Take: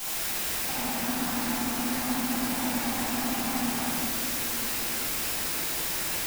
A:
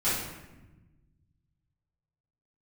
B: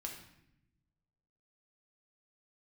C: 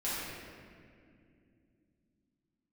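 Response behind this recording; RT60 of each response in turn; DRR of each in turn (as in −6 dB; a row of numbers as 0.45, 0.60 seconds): C; 1.1, 0.80, 2.4 seconds; −13.0, 0.5, −11.0 decibels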